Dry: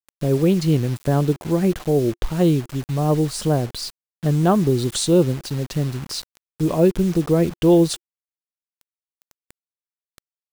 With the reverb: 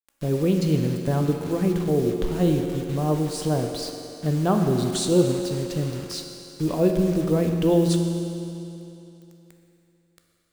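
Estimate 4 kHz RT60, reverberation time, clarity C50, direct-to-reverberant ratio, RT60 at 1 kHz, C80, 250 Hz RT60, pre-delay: 2.8 s, 2.9 s, 4.5 dB, 3.0 dB, 2.9 s, 5.0 dB, 2.9 s, 11 ms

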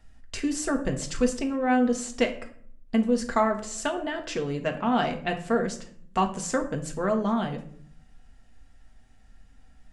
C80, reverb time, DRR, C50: 15.5 dB, 0.60 s, 3.0 dB, 11.0 dB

